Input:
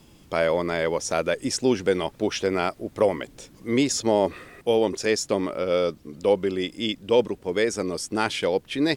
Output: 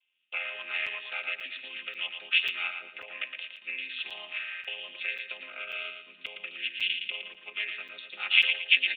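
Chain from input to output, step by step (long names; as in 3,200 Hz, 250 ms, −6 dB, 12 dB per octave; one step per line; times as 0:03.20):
channel vocoder with a chord as carrier minor triad, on F3
noise gate with hold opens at −42 dBFS
automatic gain control gain up to 9 dB
brickwall limiter −15 dBFS, peak gain reduction 12 dB
downward compressor, threshold −27 dBFS, peak gain reduction 8.5 dB
high-pass with resonance 2,600 Hz, resonance Q 5.1
on a send: repeating echo 114 ms, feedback 33%, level −6.5 dB
on the sum: downsampling to 8,000 Hz
regular buffer underruns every 0.54 s, samples 256, zero, from 0:00.86
level +6 dB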